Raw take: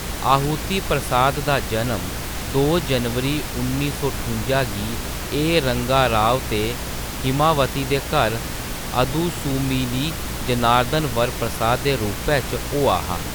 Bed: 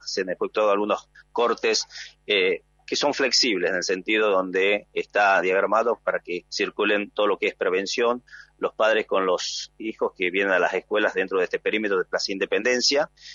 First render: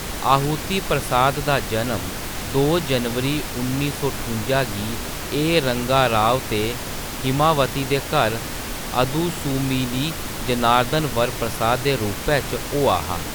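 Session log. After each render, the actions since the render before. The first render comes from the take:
mains-hum notches 60/120/180 Hz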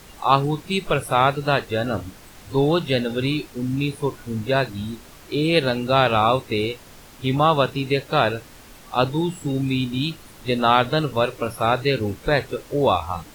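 noise reduction from a noise print 16 dB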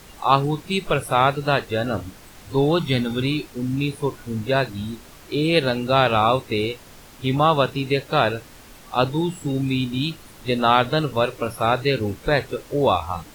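0:02.79–0:03.22: comb filter 0.9 ms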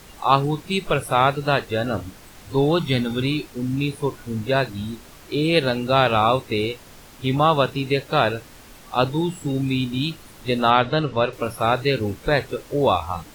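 0:02.82–0:03.26: floating-point word with a short mantissa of 8 bits
0:10.70–0:11.33: low-pass filter 4,600 Hz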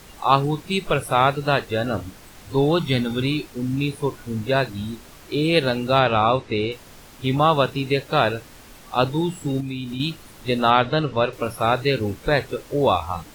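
0:05.99–0:06.72: high-frequency loss of the air 86 metres
0:09.60–0:10.00: downward compressor 4 to 1, threshold −26 dBFS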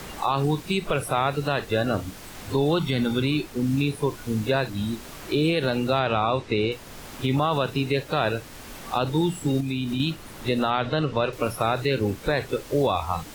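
brickwall limiter −13 dBFS, peak gain reduction 11 dB
multiband upward and downward compressor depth 40%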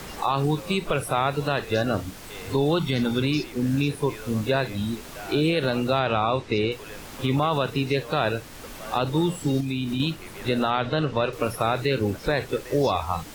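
mix in bed −21 dB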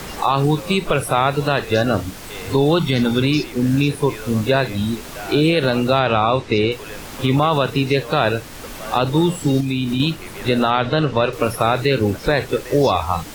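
level +6.5 dB

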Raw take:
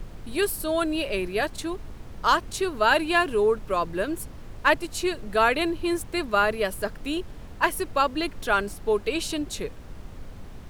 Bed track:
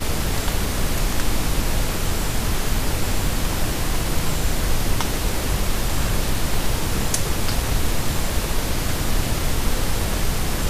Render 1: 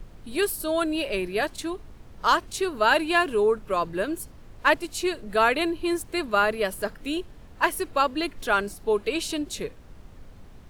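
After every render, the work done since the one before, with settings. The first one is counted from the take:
noise reduction from a noise print 6 dB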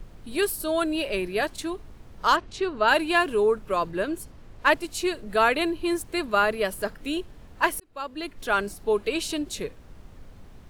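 0:02.36–0:02.88: high-frequency loss of the air 120 metres
0:03.91–0:04.66: high-shelf EQ 9,700 Hz −7 dB
0:07.80–0:08.63: fade in linear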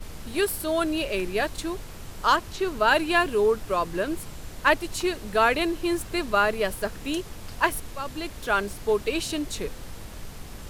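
mix in bed track −18.5 dB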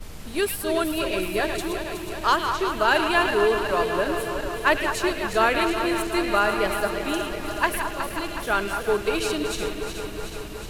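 feedback delay that plays each chunk backwards 184 ms, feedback 83%, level −8.5 dB
echo through a band-pass that steps 107 ms, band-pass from 2,700 Hz, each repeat −1.4 octaves, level −5 dB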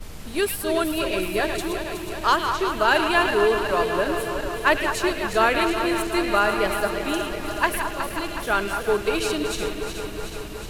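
level +1 dB

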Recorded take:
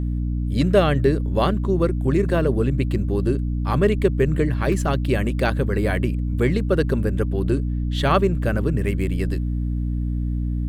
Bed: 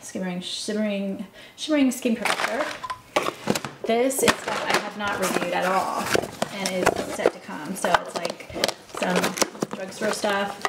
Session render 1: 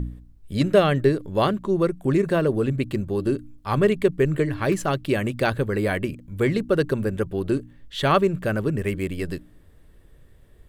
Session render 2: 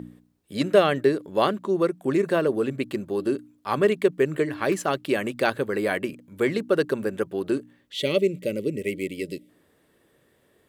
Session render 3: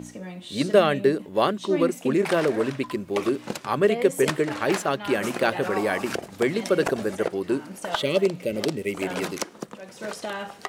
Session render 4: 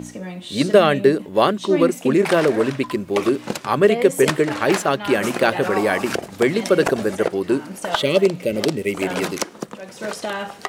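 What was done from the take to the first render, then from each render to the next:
hum removal 60 Hz, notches 5
0:07.92–0:09.49: gain on a spectral selection 620–1,900 Hz −22 dB; high-pass filter 250 Hz 12 dB per octave
mix in bed −8.5 dB
level +5.5 dB; brickwall limiter −2 dBFS, peak gain reduction 2.5 dB

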